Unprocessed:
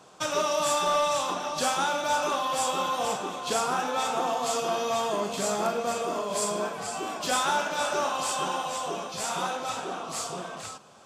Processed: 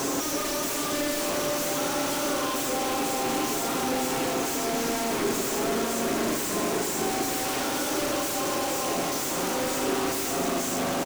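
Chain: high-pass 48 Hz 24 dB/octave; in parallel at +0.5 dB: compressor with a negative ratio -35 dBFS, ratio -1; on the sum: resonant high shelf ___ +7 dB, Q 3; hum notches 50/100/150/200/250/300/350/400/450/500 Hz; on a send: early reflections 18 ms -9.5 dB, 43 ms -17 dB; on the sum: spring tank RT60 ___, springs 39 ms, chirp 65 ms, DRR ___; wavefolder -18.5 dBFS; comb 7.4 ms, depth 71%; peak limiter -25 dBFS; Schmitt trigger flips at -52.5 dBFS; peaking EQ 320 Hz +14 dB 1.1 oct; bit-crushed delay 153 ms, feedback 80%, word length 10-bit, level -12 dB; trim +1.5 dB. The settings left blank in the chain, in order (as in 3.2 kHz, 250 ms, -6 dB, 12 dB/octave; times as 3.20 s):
5 kHz, 2.6 s, -2 dB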